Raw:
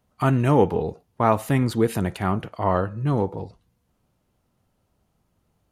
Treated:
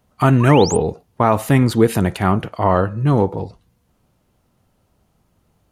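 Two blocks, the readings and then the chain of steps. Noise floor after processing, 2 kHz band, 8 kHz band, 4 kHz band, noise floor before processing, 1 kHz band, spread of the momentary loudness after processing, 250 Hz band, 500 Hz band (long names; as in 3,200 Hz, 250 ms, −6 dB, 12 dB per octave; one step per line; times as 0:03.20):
−64 dBFS, +7.5 dB, +11.5 dB, +10.5 dB, −71 dBFS, +5.5 dB, 9 LU, +6.5 dB, +6.0 dB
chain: sound drawn into the spectrogram rise, 0:00.40–0:00.77, 930–9,700 Hz −33 dBFS
boost into a limiter +8 dB
level −1 dB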